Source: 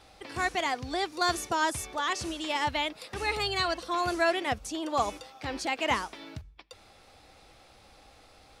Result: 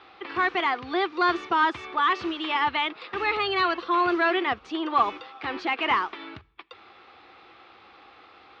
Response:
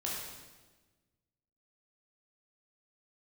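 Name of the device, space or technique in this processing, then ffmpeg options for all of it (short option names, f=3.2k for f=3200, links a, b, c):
overdrive pedal into a guitar cabinet: -filter_complex "[0:a]asplit=2[a][b];[b]highpass=f=720:p=1,volume=12dB,asoftclip=type=tanh:threshold=-14dB[c];[a][c]amix=inputs=2:normalize=0,lowpass=f=6.2k:p=1,volume=-6dB,highpass=85,equalizer=f=140:t=q:w=4:g=-4,equalizer=f=360:t=q:w=4:g=9,equalizer=f=590:t=q:w=4:g=-8,equalizer=f=1.2k:t=q:w=4:g=7,lowpass=f=3.5k:w=0.5412,lowpass=f=3.5k:w=1.3066"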